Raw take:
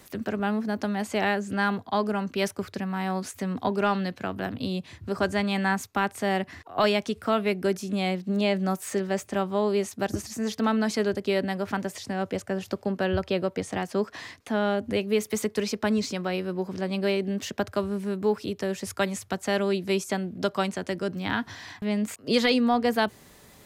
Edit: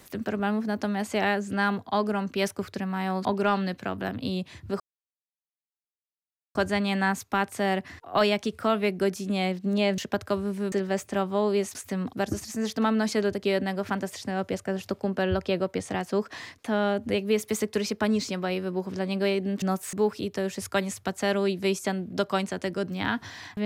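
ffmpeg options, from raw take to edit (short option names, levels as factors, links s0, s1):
-filter_complex "[0:a]asplit=9[s0][s1][s2][s3][s4][s5][s6][s7][s8];[s0]atrim=end=3.252[s9];[s1]atrim=start=3.628:end=5.18,asetpts=PTS-STARTPTS,afade=t=out:st=1.548:d=0.004:c=hsin,apad=pad_dur=1.75[s10];[s2]atrim=start=5.18:end=8.612,asetpts=PTS-STARTPTS,afade=t=in:d=0.004:c=hsin[s11];[s3]atrim=start=17.438:end=18.182[s12];[s4]atrim=start=8.918:end=9.952[s13];[s5]atrim=start=3.248:end=3.632[s14];[s6]atrim=start=9.948:end=17.442[s15];[s7]atrim=start=8.608:end=8.922[s16];[s8]atrim=start=18.178[s17];[s10][s11]concat=n=2:v=0:a=1[s18];[s9][s18]acrossfade=d=0.004:c1=hsin:c2=hsin[s19];[s19][s12]acrossfade=d=0.004:c1=hsin:c2=hsin[s20];[s20][s13]acrossfade=d=0.004:c1=hsin:c2=hsin[s21];[s21][s14]acrossfade=d=0.004:c1=hsin:c2=hsin[s22];[s22][s15]acrossfade=d=0.004:c1=hsin:c2=hsin[s23];[s23][s16]acrossfade=d=0.004:c1=hsin:c2=hsin[s24];[s24][s17]acrossfade=d=0.004:c1=hsin:c2=hsin"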